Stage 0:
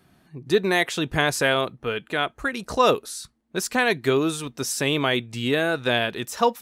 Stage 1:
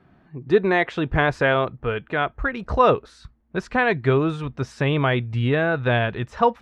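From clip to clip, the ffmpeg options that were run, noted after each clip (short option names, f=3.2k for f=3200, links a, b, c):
-af "lowpass=1.9k,asubboost=boost=6:cutoff=110,volume=3.5dB"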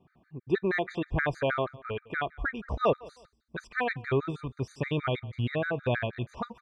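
-af "aecho=1:1:175|350:0.075|0.0225,afftfilt=real='re*gt(sin(2*PI*6.3*pts/sr)*(1-2*mod(floor(b*sr/1024/1200),2)),0)':imag='im*gt(sin(2*PI*6.3*pts/sr)*(1-2*mod(floor(b*sr/1024/1200),2)),0)':win_size=1024:overlap=0.75,volume=-6dB"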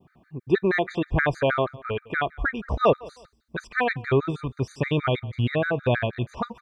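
-af "adynamicequalizer=threshold=0.00631:dfrequency=1900:dqfactor=1.3:tfrequency=1900:tqfactor=1.3:attack=5:release=100:ratio=0.375:range=1.5:mode=cutabove:tftype=bell,volume=6dB"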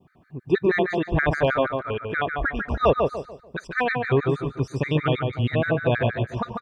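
-filter_complex "[0:a]asplit=2[a][b];[b]adelay=146,lowpass=f=2.1k:p=1,volume=-3.5dB,asplit=2[c][d];[d]adelay=146,lowpass=f=2.1k:p=1,volume=0.35,asplit=2[e][f];[f]adelay=146,lowpass=f=2.1k:p=1,volume=0.35,asplit=2[g][h];[h]adelay=146,lowpass=f=2.1k:p=1,volume=0.35,asplit=2[i][j];[j]adelay=146,lowpass=f=2.1k:p=1,volume=0.35[k];[a][c][e][g][i][k]amix=inputs=6:normalize=0" -ar 48000 -c:a aac -b:a 192k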